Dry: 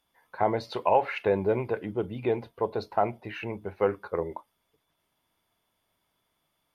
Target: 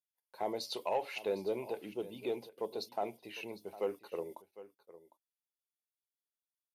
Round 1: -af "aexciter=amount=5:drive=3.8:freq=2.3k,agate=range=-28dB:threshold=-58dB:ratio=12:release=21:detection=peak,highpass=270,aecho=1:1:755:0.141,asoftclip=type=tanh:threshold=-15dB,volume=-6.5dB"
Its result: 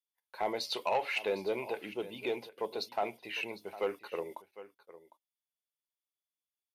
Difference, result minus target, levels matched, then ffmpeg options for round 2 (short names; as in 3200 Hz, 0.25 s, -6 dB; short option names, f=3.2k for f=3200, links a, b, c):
2000 Hz band +6.5 dB
-af "aexciter=amount=5:drive=3.8:freq=2.3k,agate=range=-28dB:threshold=-58dB:ratio=12:release=21:detection=peak,highpass=270,equalizer=f=1.9k:t=o:w=2.1:g=-11.5,aecho=1:1:755:0.141,asoftclip=type=tanh:threshold=-15dB,volume=-6.5dB"